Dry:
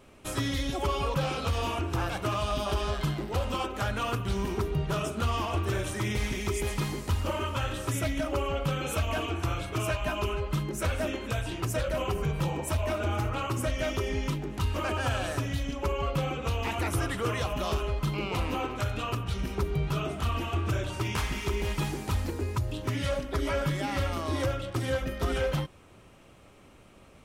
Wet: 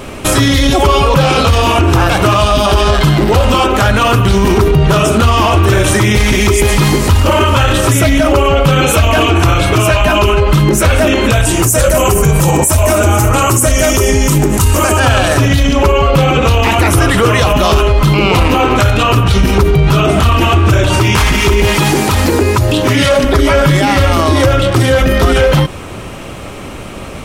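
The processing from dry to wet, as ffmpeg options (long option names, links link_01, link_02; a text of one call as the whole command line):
ffmpeg -i in.wav -filter_complex "[0:a]asettb=1/sr,asplit=3[link_01][link_02][link_03];[link_01]atrim=end=11.454[link_04];[link_02]atrim=start=11.45:end=15,asetpts=PTS-STARTPTS,afade=type=in:duration=0.004:curve=qsin,afade=type=out:start_time=3.546:duration=0.004:curve=qsin,highshelf=frequency=5500:width_type=q:width=1.5:gain=12[link_05];[link_03]atrim=start=14.996[link_06];[link_04][link_05]acrossfade=duration=0.004:curve1=hsin:curve2=qsin[link_07];[link_07][link_06]acrossfade=duration=0.004:curve1=qsin:curve2=hsin,asettb=1/sr,asplit=3[link_08][link_09][link_10];[link_08]atrim=end=21.674[link_11];[link_09]atrim=start=21.67:end=23.24,asetpts=PTS-STARTPTS,afade=type=in:duration=0.004:curve=qsin,afade=type=out:start_time=1.566:duration=0.004:curve=qsin,highpass=frequency=190:poles=1[link_12];[link_10]atrim=start=23.236[link_13];[link_11][link_12]acrossfade=duration=0.004:curve1=hsin:curve2=qsin[link_14];[link_14][link_13]acrossfade=duration=0.004:curve1=qsin:curve2=hsin,alimiter=level_in=29.5dB:limit=-1dB:release=50:level=0:latency=1,volume=-1dB" out.wav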